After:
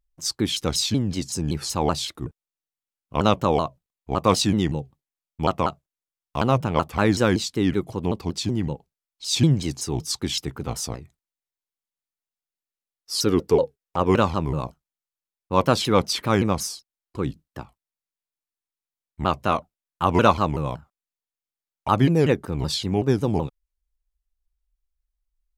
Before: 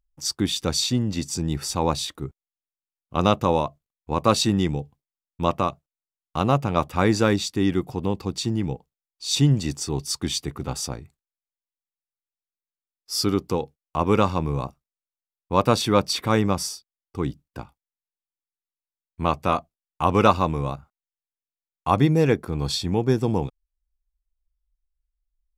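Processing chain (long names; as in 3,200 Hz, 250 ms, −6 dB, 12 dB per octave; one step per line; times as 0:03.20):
0:13.25–0:14.10: hollow resonant body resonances 470/1,700 Hz, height 13 dB → 9 dB
pitch modulation by a square or saw wave saw down 5.3 Hz, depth 250 cents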